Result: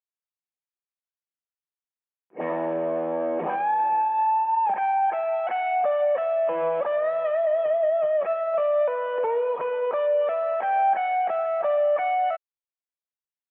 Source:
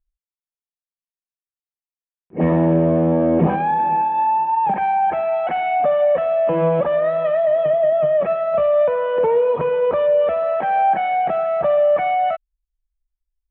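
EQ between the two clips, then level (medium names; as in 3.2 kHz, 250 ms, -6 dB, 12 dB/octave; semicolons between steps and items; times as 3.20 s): band-pass 580–3100 Hz; -3.5 dB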